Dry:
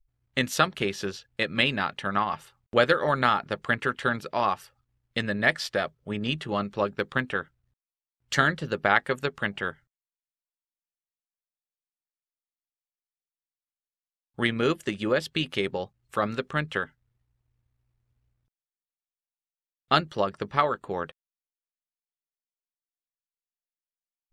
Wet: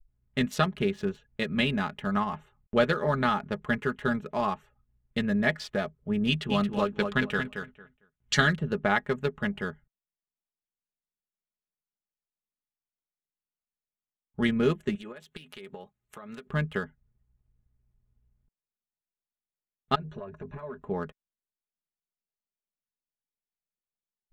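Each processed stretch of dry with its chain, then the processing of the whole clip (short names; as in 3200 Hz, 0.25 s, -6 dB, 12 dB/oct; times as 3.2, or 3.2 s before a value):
6.27–8.55 LPF 6800 Hz + high shelf 2300 Hz +12 dB + feedback echo 0.226 s, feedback 18%, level -6.5 dB
14.95–16.47 RIAA curve recording + compressor 12:1, threshold -35 dBFS
19.95–20.81 ripple EQ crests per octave 1.5, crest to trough 10 dB + compressor 10:1, threshold -32 dBFS + core saturation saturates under 1100 Hz
whole clip: Wiener smoothing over 9 samples; low shelf 310 Hz +12 dB; comb 4.8 ms, depth 60%; gain -6.5 dB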